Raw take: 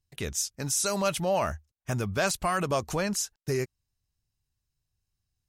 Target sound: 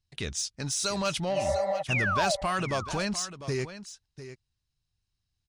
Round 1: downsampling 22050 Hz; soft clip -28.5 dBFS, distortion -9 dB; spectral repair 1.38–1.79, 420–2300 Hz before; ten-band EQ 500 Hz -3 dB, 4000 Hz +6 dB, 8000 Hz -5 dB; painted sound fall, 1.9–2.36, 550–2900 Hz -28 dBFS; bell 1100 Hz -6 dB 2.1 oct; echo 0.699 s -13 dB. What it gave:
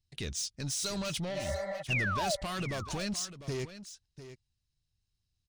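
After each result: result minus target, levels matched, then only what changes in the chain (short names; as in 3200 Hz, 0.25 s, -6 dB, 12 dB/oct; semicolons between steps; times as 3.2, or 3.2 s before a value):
soft clip: distortion +11 dB; 1000 Hz band -3.0 dB
change: soft clip -18.5 dBFS, distortion -21 dB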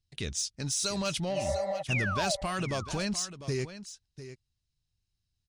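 1000 Hz band -3.0 dB
remove: bell 1100 Hz -6 dB 2.1 oct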